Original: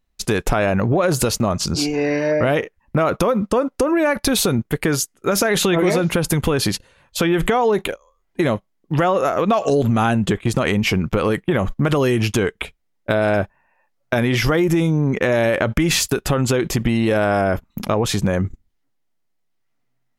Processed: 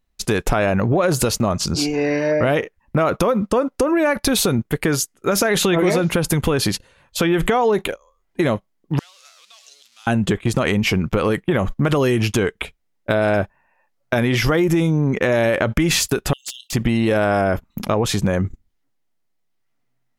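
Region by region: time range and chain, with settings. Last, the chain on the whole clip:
8.99–10.07 zero-crossing step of -24.5 dBFS + ladder band-pass 5500 Hz, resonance 25%
16.33–16.73 brick-wall FIR high-pass 2700 Hz + overloaded stage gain 23.5 dB + Doppler distortion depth 0.45 ms
whole clip: dry

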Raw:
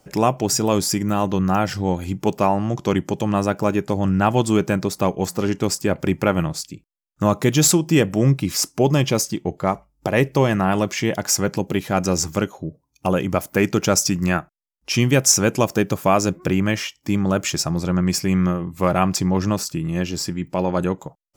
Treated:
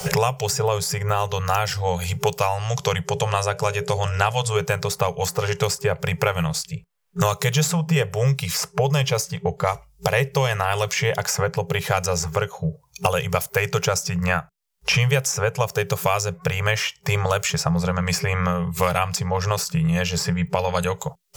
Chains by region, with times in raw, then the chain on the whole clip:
3.06–4.56 LPF 12000 Hz 24 dB/oct + notches 60/120/180/240/300/360/420/480/540/600 Hz
whole clip: FFT band-reject 180–400 Hz; bell 620 Hz -4 dB 0.23 oct; three-band squash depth 100%

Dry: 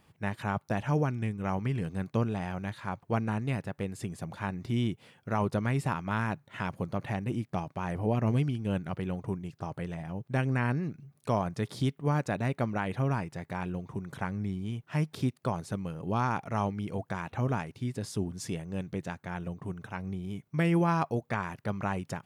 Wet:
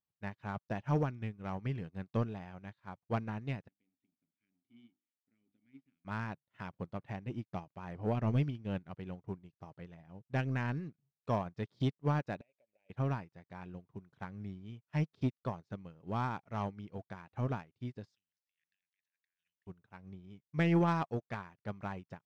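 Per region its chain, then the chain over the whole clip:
3.68–6.05 notches 50/100/150/200/250/300/350 Hz + dynamic EQ 710 Hz, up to -8 dB, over -45 dBFS, Q 0.74 + vowel filter i
12.41–12.9 double band-pass 1200 Hz, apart 2.1 oct + compressor 10:1, threshold -41 dBFS
18.15–19.67 elliptic high-pass 1700 Hz + negative-ratio compressor -59 dBFS
whole clip: LPF 5600 Hz 24 dB/oct; sample leveller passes 1; upward expander 2.5:1, over -43 dBFS; gain -3 dB

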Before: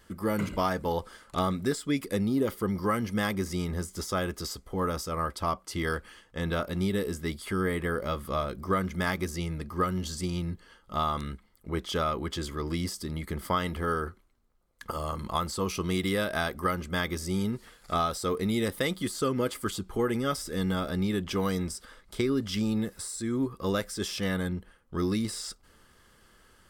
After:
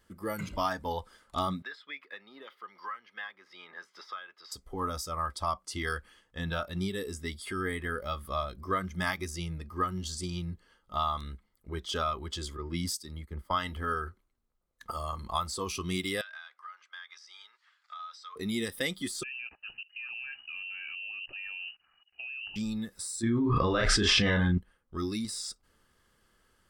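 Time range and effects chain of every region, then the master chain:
1.62–4.52 HPF 1200 Hz + air absorption 330 m + three-band squash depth 100%
12.57–13.51 gate -40 dBFS, range -7 dB + notch 710 Hz, Q 7.9 + three-band expander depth 100%
16.21–18.36 HPF 1100 Hz 24 dB/oct + compressor 8:1, threshold -36 dBFS + air absorption 160 m
19.23–22.56 level quantiser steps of 20 dB + inverted band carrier 2900 Hz
23.23–24.58 LPF 3000 Hz + doubler 34 ms -4 dB + fast leveller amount 100%
whole clip: spectral noise reduction 9 dB; dynamic EQ 420 Hz, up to -5 dB, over -39 dBFS, Q 0.82

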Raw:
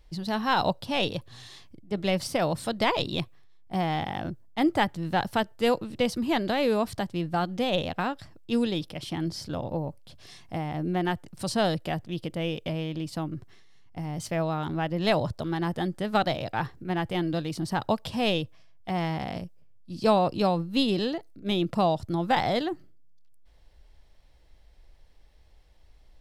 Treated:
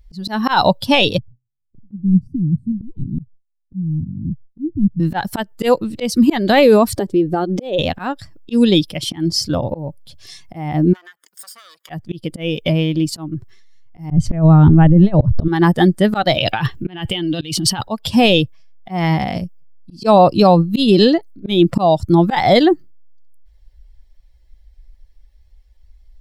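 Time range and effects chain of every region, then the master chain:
1.18–5 inverse Chebyshev low-pass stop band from 510 Hz + gate with hold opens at -40 dBFS, closes at -49 dBFS
6.97–7.79 bell 410 Hz +13.5 dB 0.89 oct + compressor 4:1, threshold -30 dBFS
10.93–11.9 minimum comb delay 0.6 ms + HPF 760 Hz + compressor 10:1, threshold -47 dBFS
14.11–15.48 RIAA curve playback + negative-ratio compressor -22 dBFS, ratio -0.5
16.37–17.81 bell 3000 Hz +11 dB 0.59 oct + negative-ratio compressor -33 dBFS
whole clip: per-bin expansion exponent 1.5; auto swell 0.245 s; maximiser +23 dB; gain -1 dB

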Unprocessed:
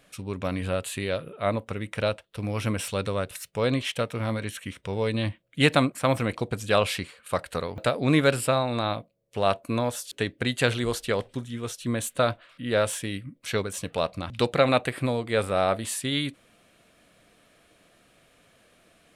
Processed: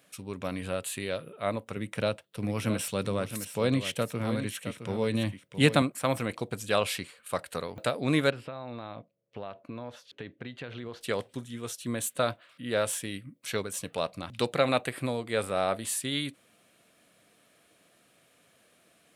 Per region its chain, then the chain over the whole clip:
1.76–5.82 HPF 130 Hz + low shelf 220 Hz +11 dB + echo 0.665 s -10 dB
8.3–11.01 compressor 12:1, threshold -29 dBFS + air absorption 270 m
whole clip: HPF 110 Hz; high shelf 7800 Hz +8 dB; gain -4.5 dB

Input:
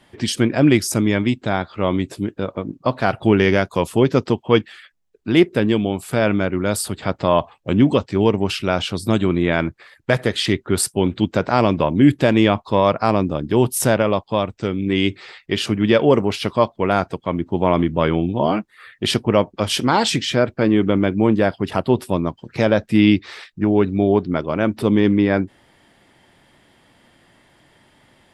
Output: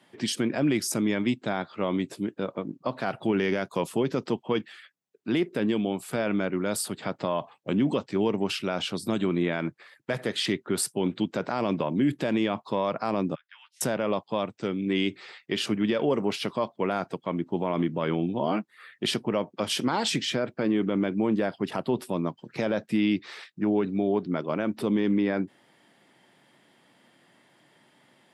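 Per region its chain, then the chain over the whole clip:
13.35–13.81 steep high-pass 1500 Hz + tape spacing loss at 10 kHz 42 dB + doubler 12 ms -3.5 dB
whole clip: HPF 140 Hz 24 dB/oct; limiter -10 dBFS; gain -6 dB

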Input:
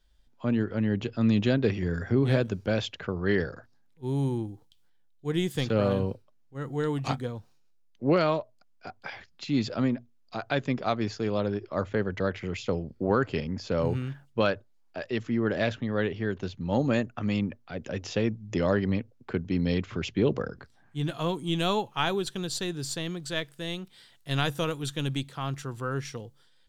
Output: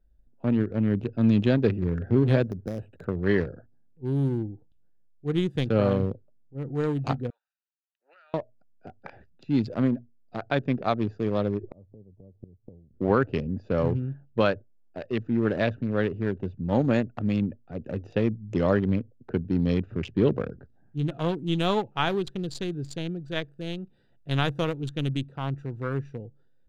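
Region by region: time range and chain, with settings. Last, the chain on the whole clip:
2.44–3.05 compressor, threshold -28 dBFS + careless resampling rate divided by 8×, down filtered, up hold
7.3–8.34 HPF 1400 Hz 24 dB/oct + compressor 12:1, threshold -37 dBFS
11.63–12.94 low shelf 160 Hz +11.5 dB + flipped gate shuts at -23 dBFS, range -28 dB + brick-wall FIR low-pass 1200 Hz
whole clip: Wiener smoothing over 41 samples; high shelf 5200 Hz -9.5 dB; gain +3 dB

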